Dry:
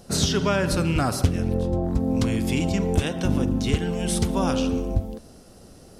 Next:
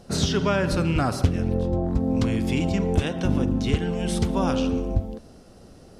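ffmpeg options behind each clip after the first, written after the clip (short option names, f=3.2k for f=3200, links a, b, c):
-af "highshelf=f=7.5k:g=-12"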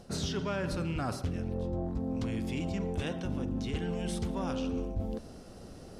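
-af "asoftclip=type=tanh:threshold=-13dB,areverse,acompressor=threshold=-31dB:ratio=6,areverse"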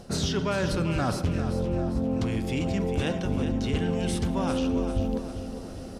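-af "aecho=1:1:398|796|1194|1592|1990:0.316|0.149|0.0699|0.0328|0.0154,volume=6.5dB"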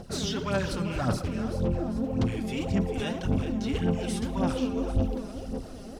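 -af "aphaser=in_gain=1:out_gain=1:delay=5:decay=0.62:speed=1.8:type=sinusoidal,acrusher=bits=11:mix=0:aa=0.000001,asoftclip=type=tanh:threshold=-12.5dB,volume=-4dB"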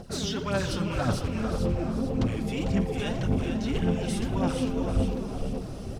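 -filter_complex "[0:a]asplit=6[a][b][c][d][e][f];[b]adelay=448,afreqshift=-69,volume=-6.5dB[g];[c]adelay=896,afreqshift=-138,volume=-14dB[h];[d]adelay=1344,afreqshift=-207,volume=-21.6dB[i];[e]adelay=1792,afreqshift=-276,volume=-29.1dB[j];[f]adelay=2240,afreqshift=-345,volume=-36.6dB[k];[a][g][h][i][j][k]amix=inputs=6:normalize=0"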